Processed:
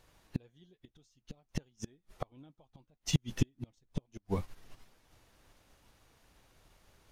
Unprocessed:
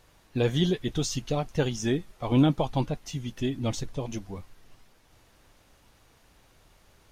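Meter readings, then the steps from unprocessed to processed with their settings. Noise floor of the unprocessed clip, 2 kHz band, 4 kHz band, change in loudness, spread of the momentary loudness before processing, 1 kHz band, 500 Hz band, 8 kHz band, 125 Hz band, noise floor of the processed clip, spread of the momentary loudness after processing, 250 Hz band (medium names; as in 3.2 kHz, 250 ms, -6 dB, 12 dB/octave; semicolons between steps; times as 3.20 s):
-61 dBFS, -12.0 dB, -11.0 dB, -11.0 dB, 13 LU, -15.0 dB, -16.0 dB, -8.5 dB, -10.0 dB, -79 dBFS, 19 LU, -13.5 dB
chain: inverted gate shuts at -24 dBFS, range -33 dB; upward expansion 1.5:1, over -60 dBFS; trim +8.5 dB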